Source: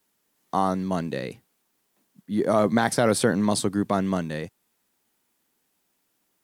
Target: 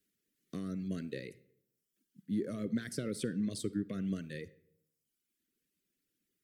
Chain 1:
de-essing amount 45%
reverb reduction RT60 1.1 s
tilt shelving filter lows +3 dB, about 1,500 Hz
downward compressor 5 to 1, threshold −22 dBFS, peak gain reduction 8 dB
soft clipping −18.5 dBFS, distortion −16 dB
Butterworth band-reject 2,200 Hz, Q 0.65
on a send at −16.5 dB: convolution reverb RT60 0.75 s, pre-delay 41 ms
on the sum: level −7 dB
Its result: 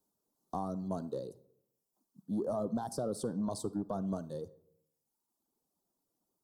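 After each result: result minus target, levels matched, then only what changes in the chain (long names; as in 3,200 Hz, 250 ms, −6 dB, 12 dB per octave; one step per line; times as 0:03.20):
1,000 Hz band +15.5 dB; soft clipping: distortion +14 dB
change: Butterworth band-reject 860 Hz, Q 0.65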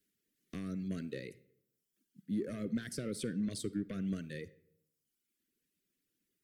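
soft clipping: distortion +14 dB
change: soft clipping −9 dBFS, distortion −31 dB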